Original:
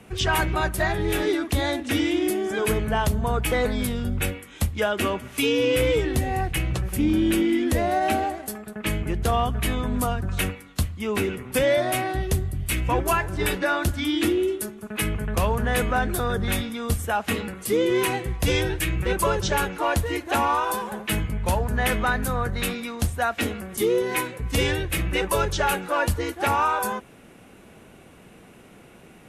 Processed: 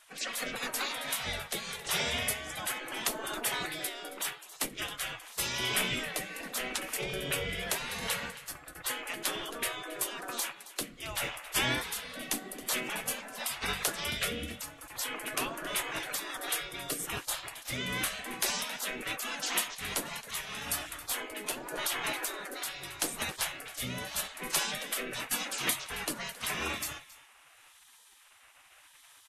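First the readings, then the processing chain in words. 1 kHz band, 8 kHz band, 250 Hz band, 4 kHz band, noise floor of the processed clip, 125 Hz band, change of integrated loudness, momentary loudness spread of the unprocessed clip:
-13.5 dB, -1.0 dB, -18.0 dB, -2.5 dB, -59 dBFS, -20.0 dB, -9.5 dB, 6 LU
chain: rotary speaker horn 0.85 Hz; echo 0.271 s -17.5 dB; spectral gate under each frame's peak -20 dB weak; gain +4 dB

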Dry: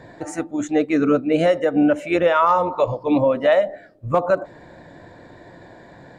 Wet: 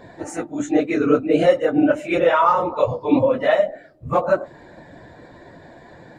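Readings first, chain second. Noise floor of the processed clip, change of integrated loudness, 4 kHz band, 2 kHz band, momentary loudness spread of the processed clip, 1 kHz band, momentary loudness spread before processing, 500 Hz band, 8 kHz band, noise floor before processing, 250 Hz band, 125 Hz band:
-45 dBFS, +0.5 dB, 0.0 dB, +0.5 dB, 12 LU, 0.0 dB, 11 LU, +0.5 dB, n/a, -45 dBFS, 0.0 dB, -0.5 dB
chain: phase scrambler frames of 50 ms

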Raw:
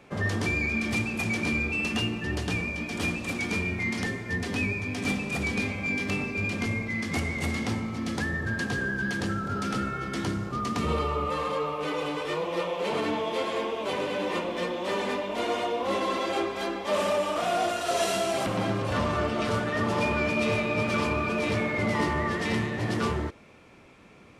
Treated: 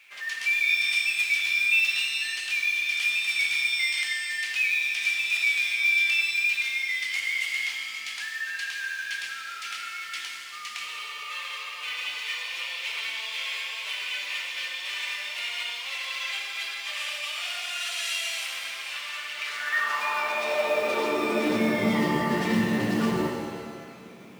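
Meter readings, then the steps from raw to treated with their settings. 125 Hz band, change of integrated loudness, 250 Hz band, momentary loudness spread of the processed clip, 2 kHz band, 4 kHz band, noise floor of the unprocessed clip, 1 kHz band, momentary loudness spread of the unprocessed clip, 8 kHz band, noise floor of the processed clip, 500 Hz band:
n/a, +2.0 dB, -2.5 dB, 12 LU, +5.5 dB, +7.5 dB, -40 dBFS, -4.5 dB, 4 LU, +3.5 dB, -39 dBFS, -5.0 dB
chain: limiter -21.5 dBFS, peak gain reduction 6 dB; high-pass sweep 2400 Hz -> 190 Hz, 19.32–21.79; companded quantiser 6-bit; shimmer reverb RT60 1.9 s, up +7 st, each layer -8 dB, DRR 2 dB

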